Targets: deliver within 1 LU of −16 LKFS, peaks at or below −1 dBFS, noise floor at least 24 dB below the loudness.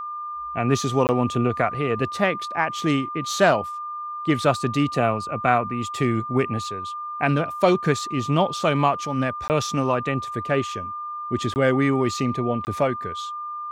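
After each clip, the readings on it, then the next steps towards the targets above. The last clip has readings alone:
number of dropouts 4; longest dropout 19 ms; interfering tone 1,200 Hz; level of the tone −29 dBFS; integrated loudness −23.5 LKFS; sample peak −4.0 dBFS; target loudness −16.0 LKFS
→ repair the gap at 0:01.07/0:09.48/0:11.54/0:12.65, 19 ms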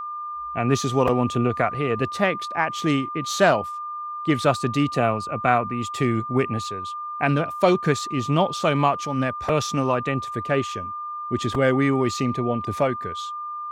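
number of dropouts 0; interfering tone 1,200 Hz; level of the tone −29 dBFS
→ notch filter 1,200 Hz, Q 30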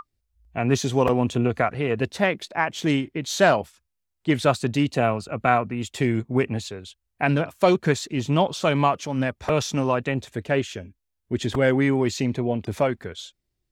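interfering tone none found; integrated loudness −23.5 LKFS; sample peak −4.5 dBFS; target loudness −16.0 LKFS
→ level +7.5 dB
brickwall limiter −1 dBFS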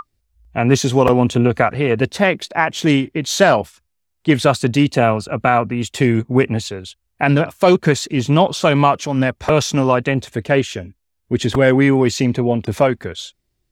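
integrated loudness −16.5 LKFS; sample peak −1.0 dBFS; background noise floor −71 dBFS

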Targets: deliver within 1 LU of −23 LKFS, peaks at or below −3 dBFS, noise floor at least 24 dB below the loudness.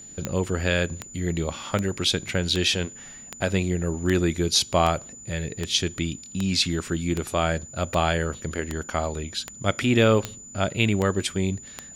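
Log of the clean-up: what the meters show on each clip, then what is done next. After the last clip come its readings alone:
number of clicks 16; interfering tone 7,000 Hz; level of the tone −41 dBFS; integrated loudness −25.0 LKFS; sample peak −6.0 dBFS; target loudness −23.0 LKFS
→ click removal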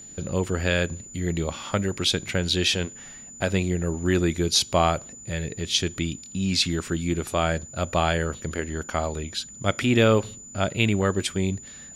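number of clicks 0; interfering tone 7,000 Hz; level of the tone −41 dBFS
→ notch filter 7,000 Hz, Q 30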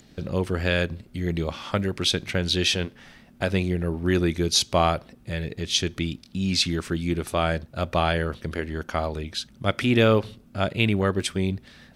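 interfering tone none found; integrated loudness −25.0 LKFS; sample peak −6.0 dBFS; target loudness −23.0 LKFS
→ level +2 dB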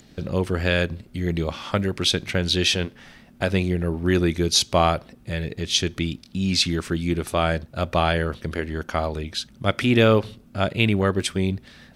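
integrated loudness −23.0 LKFS; sample peak −4.0 dBFS; background noise floor −51 dBFS

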